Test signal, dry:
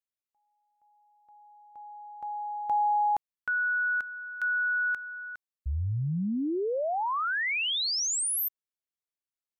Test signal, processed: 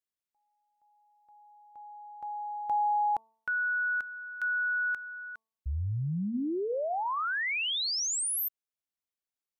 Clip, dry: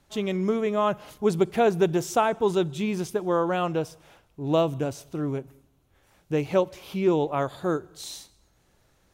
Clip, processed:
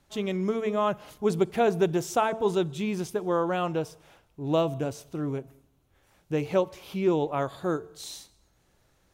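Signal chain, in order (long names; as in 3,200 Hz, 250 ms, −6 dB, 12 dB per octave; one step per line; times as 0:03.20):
hum removal 222.8 Hz, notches 5
level −2 dB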